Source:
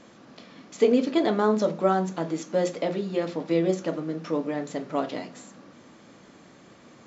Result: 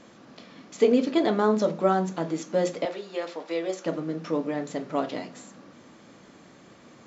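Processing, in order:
0:02.85–0:03.86: high-pass filter 530 Hz 12 dB per octave

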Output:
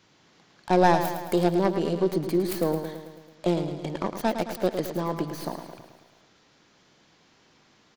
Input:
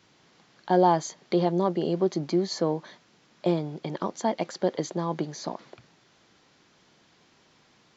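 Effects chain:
stylus tracing distortion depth 0.33 ms
repeating echo 109 ms, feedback 58%, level −9 dB

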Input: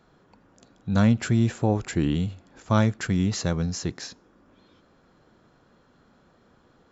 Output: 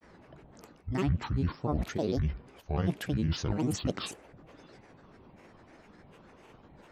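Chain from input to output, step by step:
low-pass filter 3,900 Hz 6 dB per octave
reversed playback
downward compressor 6 to 1, threshold −31 dBFS, peak gain reduction 15.5 dB
reversed playback
granular cloud, grains 20 per second, spray 12 ms, pitch spread up and down by 12 semitones
level +5.5 dB

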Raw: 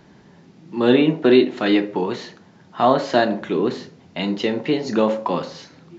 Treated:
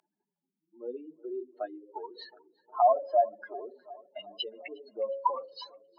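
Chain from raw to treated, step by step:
expanding power law on the bin magnitudes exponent 3.9
Chebyshev high-pass filter 780 Hz, order 3
notch filter 1,900 Hz, Q 5.1
feedback echo with a low-pass in the loop 361 ms, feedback 68%, low-pass 1,800 Hz, level −21.5 dB
treble cut that deepens with the level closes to 1,100 Hz, closed at −21 dBFS

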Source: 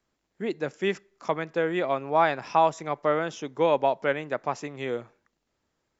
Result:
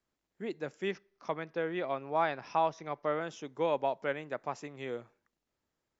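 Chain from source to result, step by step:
0:00.91–0:03.21: Butterworth low-pass 6,300 Hz 96 dB per octave
level −8 dB

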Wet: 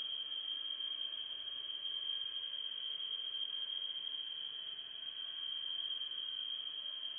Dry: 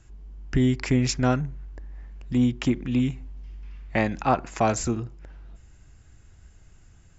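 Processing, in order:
voice inversion scrambler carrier 3,200 Hz
extreme stretch with random phases 13×, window 0.10 s, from 0:05.66
level +6 dB

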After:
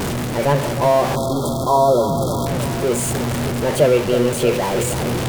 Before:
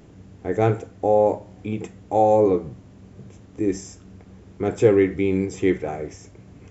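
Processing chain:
converter with a step at zero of −19 dBFS
reversed playback
upward compression, threshold −20 dBFS
reversed playback
change of speed 1.27×
feedback echo with a low-pass in the loop 315 ms, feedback 65%, level −9.5 dB
time-frequency box erased 0:01.15–0:02.47, 1,400–3,200 Hz

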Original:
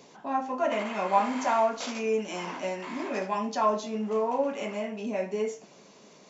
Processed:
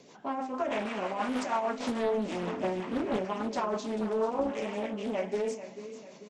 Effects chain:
0:01.78–0:03.25: spectral tilt −2.5 dB per octave
brickwall limiter −20.5 dBFS, peak gain reduction 10 dB
rotating-speaker cabinet horn 6.3 Hz
repeating echo 441 ms, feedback 48%, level −12.5 dB
highs frequency-modulated by the lows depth 0.57 ms
level +1 dB

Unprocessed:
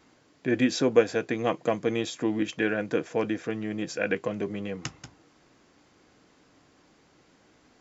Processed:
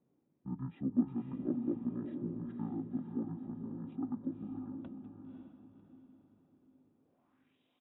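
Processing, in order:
pitch shifter −11.5 semitones
band-pass filter sweep 290 Hz → 3,400 Hz, 0:06.98–0:07.59
feedback delay with all-pass diffusion 545 ms, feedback 42%, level −5 dB
level −6.5 dB

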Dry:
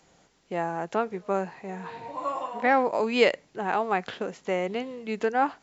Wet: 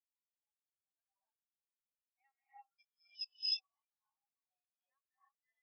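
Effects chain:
slices reordered back to front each 232 ms, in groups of 3
formants moved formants +3 semitones
resonant band-pass 5,700 Hz, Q 4.3
reverb whose tail is shaped and stops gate 370 ms rising, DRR −4.5 dB
every bin expanded away from the loudest bin 4 to 1
level −6 dB

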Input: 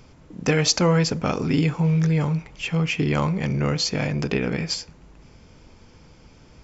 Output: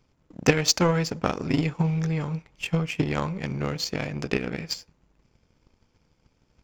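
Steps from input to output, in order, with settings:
transient designer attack +6 dB, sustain +1 dB
power curve on the samples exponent 1.4

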